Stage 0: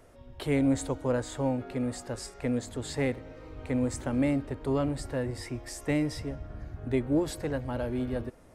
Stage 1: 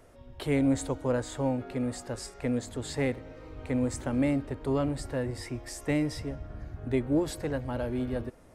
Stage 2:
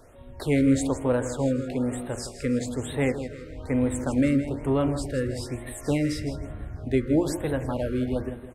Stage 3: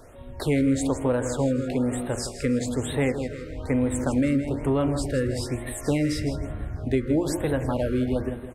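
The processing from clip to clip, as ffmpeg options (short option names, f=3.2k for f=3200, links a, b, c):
-af anull
-filter_complex "[0:a]bandreject=f=59.43:t=h:w=4,bandreject=f=118.86:t=h:w=4,bandreject=f=178.29:t=h:w=4,bandreject=f=237.72:t=h:w=4,bandreject=f=297.15:t=h:w=4,bandreject=f=356.58:t=h:w=4,bandreject=f=416.01:t=h:w=4,bandreject=f=475.44:t=h:w=4,bandreject=f=534.87:t=h:w=4,bandreject=f=594.3:t=h:w=4,bandreject=f=653.73:t=h:w=4,bandreject=f=713.16:t=h:w=4,bandreject=f=772.59:t=h:w=4,bandreject=f=832.02:t=h:w=4,bandreject=f=891.45:t=h:w=4,bandreject=f=950.88:t=h:w=4,bandreject=f=1.01031k:t=h:w=4,bandreject=f=1.06974k:t=h:w=4,bandreject=f=1.12917k:t=h:w=4,bandreject=f=1.1886k:t=h:w=4,bandreject=f=1.24803k:t=h:w=4,bandreject=f=1.30746k:t=h:w=4,bandreject=f=1.36689k:t=h:w=4,bandreject=f=1.42632k:t=h:w=4,bandreject=f=1.48575k:t=h:w=4,bandreject=f=1.54518k:t=h:w=4,bandreject=f=1.60461k:t=h:w=4,bandreject=f=1.66404k:t=h:w=4,bandreject=f=1.72347k:t=h:w=4,bandreject=f=1.7829k:t=h:w=4,bandreject=f=1.84233k:t=h:w=4,bandreject=f=1.90176k:t=h:w=4,bandreject=f=1.96119k:t=h:w=4,bandreject=f=2.02062k:t=h:w=4,bandreject=f=2.08005k:t=h:w=4,bandreject=f=2.13948k:t=h:w=4,bandreject=f=2.19891k:t=h:w=4,asplit=2[a][b];[b]aecho=0:1:162|324|486|648:0.282|0.11|0.0429|0.0167[c];[a][c]amix=inputs=2:normalize=0,afftfilt=real='re*(1-between(b*sr/1024,790*pow(6000/790,0.5+0.5*sin(2*PI*1.1*pts/sr))/1.41,790*pow(6000/790,0.5+0.5*sin(2*PI*1.1*pts/sr))*1.41))':imag='im*(1-between(b*sr/1024,790*pow(6000/790,0.5+0.5*sin(2*PI*1.1*pts/sr))/1.41,790*pow(6000/790,0.5+0.5*sin(2*PI*1.1*pts/sr))*1.41))':win_size=1024:overlap=0.75,volume=4.5dB"
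-af "acompressor=threshold=-25dB:ratio=2.5,volume=4dB"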